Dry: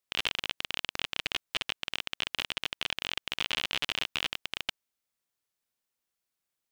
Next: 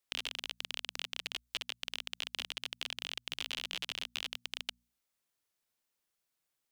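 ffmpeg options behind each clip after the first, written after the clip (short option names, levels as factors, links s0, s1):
-filter_complex "[0:a]bandreject=f=60:t=h:w=6,bandreject=f=120:t=h:w=6,bandreject=f=180:t=h:w=6,bandreject=f=240:t=h:w=6,acrossover=split=560|1200|3100[s0][s1][s2][s3];[s0]acompressor=threshold=0.00178:ratio=4[s4];[s1]acompressor=threshold=0.00126:ratio=4[s5];[s2]acompressor=threshold=0.00501:ratio=4[s6];[s3]acompressor=threshold=0.0126:ratio=4[s7];[s4][s5][s6][s7]amix=inputs=4:normalize=0,volume=1.12"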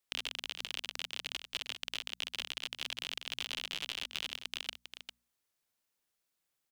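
-af "aecho=1:1:400:0.355"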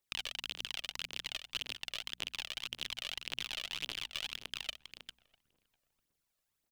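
-filter_complex "[0:a]asplit=2[s0][s1];[s1]adelay=649,lowpass=f=870:p=1,volume=0.0841,asplit=2[s2][s3];[s3]adelay=649,lowpass=f=870:p=1,volume=0.39,asplit=2[s4][s5];[s5]adelay=649,lowpass=f=870:p=1,volume=0.39[s6];[s0][s2][s4][s6]amix=inputs=4:normalize=0,aphaser=in_gain=1:out_gain=1:delay=1.8:decay=0.55:speed=1.8:type=triangular,volume=0.75"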